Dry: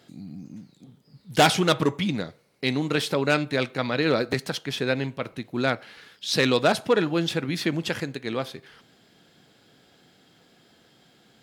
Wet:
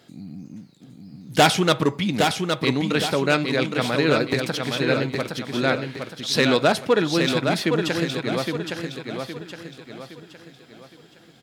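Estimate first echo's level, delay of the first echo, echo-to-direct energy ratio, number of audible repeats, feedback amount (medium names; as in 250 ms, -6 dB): -5.0 dB, 815 ms, -4.0 dB, 4, 40%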